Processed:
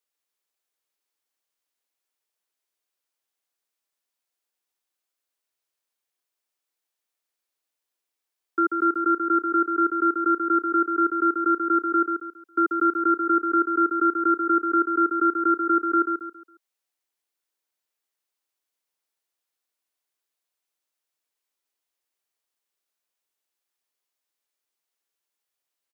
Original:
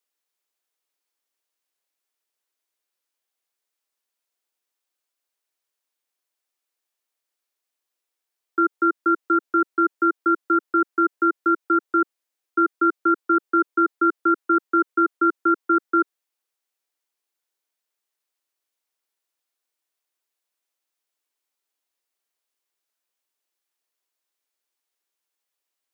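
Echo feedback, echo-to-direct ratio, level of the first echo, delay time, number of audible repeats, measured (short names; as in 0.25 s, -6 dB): 33%, -5.0 dB, -5.5 dB, 0.137 s, 4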